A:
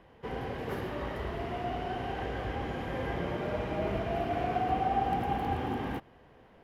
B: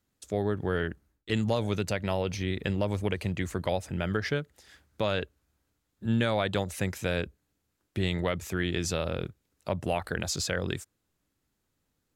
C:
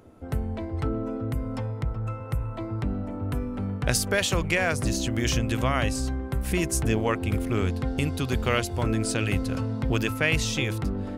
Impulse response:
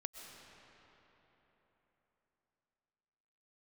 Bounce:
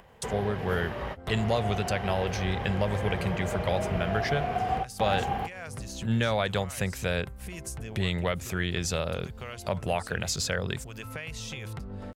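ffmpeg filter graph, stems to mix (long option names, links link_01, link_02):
-filter_complex "[0:a]volume=2dB[link_01];[1:a]agate=range=-33dB:threshold=-60dB:ratio=3:detection=peak,volume=1.5dB,asplit=2[link_02][link_03];[2:a]acompressor=threshold=-31dB:ratio=6,adelay=950,volume=-9.5dB[link_04];[link_03]apad=whole_len=292383[link_05];[link_01][link_05]sidechaingate=range=-33dB:threshold=-58dB:ratio=16:detection=peak[link_06];[link_06][link_02][link_04]amix=inputs=3:normalize=0,equalizer=frequency=300:width=2.9:gain=-11,acompressor=mode=upward:threshold=-29dB:ratio=2.5"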